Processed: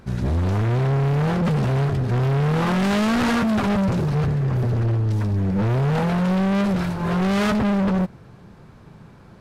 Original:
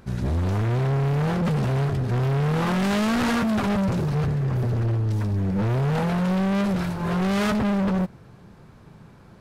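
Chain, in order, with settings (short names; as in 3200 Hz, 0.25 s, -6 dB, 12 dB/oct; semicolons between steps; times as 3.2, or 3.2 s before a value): high shelf 8400 Hz -4.5 dB; gain +2.5 dB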